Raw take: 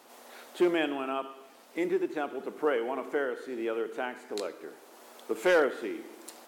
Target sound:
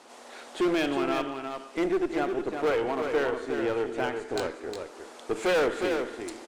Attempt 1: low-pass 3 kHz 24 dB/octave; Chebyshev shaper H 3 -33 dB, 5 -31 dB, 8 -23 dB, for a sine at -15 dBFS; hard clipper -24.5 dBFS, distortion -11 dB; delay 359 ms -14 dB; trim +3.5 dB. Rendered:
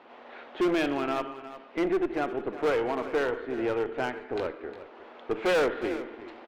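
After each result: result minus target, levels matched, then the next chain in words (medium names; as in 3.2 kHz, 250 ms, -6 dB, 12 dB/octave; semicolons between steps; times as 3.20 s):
8 kHz band -6.0 dB; echo-to-direct -8 dB
low-pass 9.2 kHz 24 dB/octave; Chebyshev shaper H 3 -33 dB, 5 -31 dB, 8 -23 dB, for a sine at -15 dBFS; hard clipper -24.5 dBFS, distortion -11 dB; delay 359 ms -14 dB; trim +3.5 dB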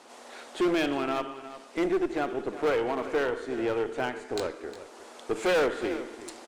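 echo-to-direct -8 dB
low-pass 9.2 kHz 24 dB/octave; Chebyshev shaper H 3 -33 dB, 5 -31 dB, 8 -23 dB, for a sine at -15 dBFS; hard clipper -24.5 dBFS, distortion -11 dB; delay 359 ms -6 dB; trim +3.5 dB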